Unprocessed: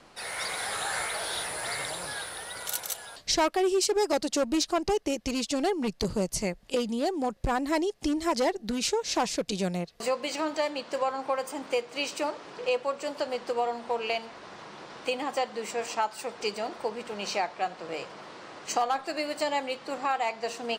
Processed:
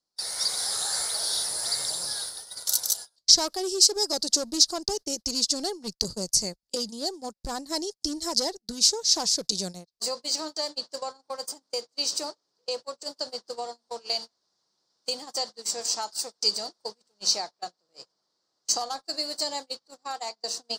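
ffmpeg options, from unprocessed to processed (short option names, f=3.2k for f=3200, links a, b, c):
-filter_complex "[0:a]asettb=1/sr,asplit=3[a][b][c];[a]atrim=end=13.664[d];[b]atrim=start=13.66:end=17.32,asetpts=PTS-STARTPTS,afade=t=in:d=0.004:c=qsin,afade=t=out:st=3.656:d=0.004:c=qsin,highshelf=f=3.2k:g=3.5[e];[c]atrim=start=17.316[f];[d][e]acrossfade=d=0.004:c1=hsin:c2=qsin[g];[g][f]acrossfade=d=0.004:c1=qsin:c2=hsin,highshelf=f=3.5k:t=q:w=3:g=11.5,agate=range=-32dB:threshold=-28dB:ratio=16:detection=peak,volume=-5.5dB"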